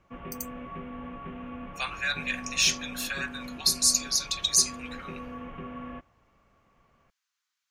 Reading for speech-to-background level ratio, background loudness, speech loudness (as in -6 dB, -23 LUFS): 15.0 dB, -41.0 LUFS, -26.0 LUFS